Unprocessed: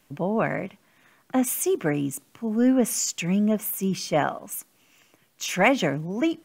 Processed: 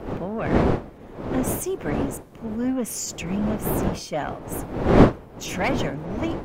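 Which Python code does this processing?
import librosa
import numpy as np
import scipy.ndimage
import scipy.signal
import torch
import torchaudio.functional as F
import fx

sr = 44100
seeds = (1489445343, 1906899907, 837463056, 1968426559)

y = fx.diode_clip(x, sr, knee_db=-14.0)
y = fx.dmg_wind(y, sr, seeds[0], corner_hz=460.0, level_db=-22.0)
y = F.gain(torch.from_numpy(y), -3.0).numpy()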